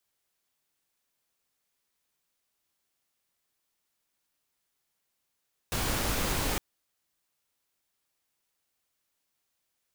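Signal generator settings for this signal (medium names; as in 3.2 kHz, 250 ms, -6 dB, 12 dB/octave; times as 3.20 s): noise pink, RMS -29.5 dBFS 0.86 s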